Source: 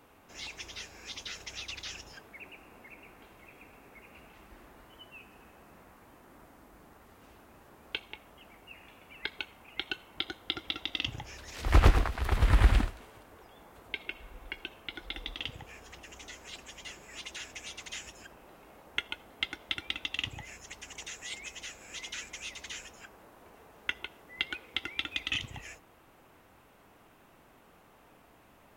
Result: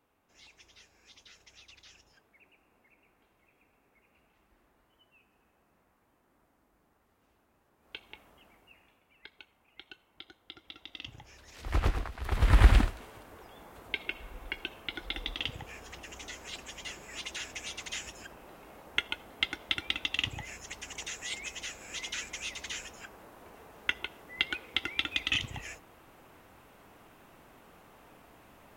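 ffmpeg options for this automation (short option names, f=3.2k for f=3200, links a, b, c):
-af "volume=14dB,afade=t=in:st=7.78:d=0.4:silence=0.281838,afade=t=out:st=8.18:d=0.85:silence=0.281838,afade=t=in:st=10.57:d=0.93:silence=0.446684,afade=t=in:st=12.19:d=0.44:silence=0.298538"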